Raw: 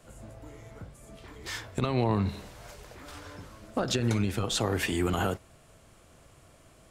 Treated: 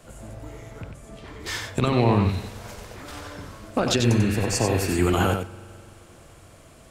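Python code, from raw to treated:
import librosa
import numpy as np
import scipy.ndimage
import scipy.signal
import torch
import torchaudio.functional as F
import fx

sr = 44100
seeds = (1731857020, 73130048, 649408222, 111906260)

y = fx.rattle_buzz(x, sr, strikes_db=-35.0, level_db=-35.0)
y = fx.high_shelf(y, sr, hz=9400.0, db=-10.0, at=(0.82, 1.4))
y = fx.spec_repair(y, sr, seeds[0], start_s=4.07, length_s=0.88, low_hz=1100.0, high_hz=4300.0, source='before')
y = y + 10.0 ** (-6.0 / 20.0) * np.pad(y, (int(93 * sr / 1000.0), 0))[:len(y)]
y = fx.rev_spring(y, sr, rt60_s=2.7, pass_ms=(42,), chirp_ms=25, drr_db=19.0)
y = y * 10.0 ** (6.0 / 20.0)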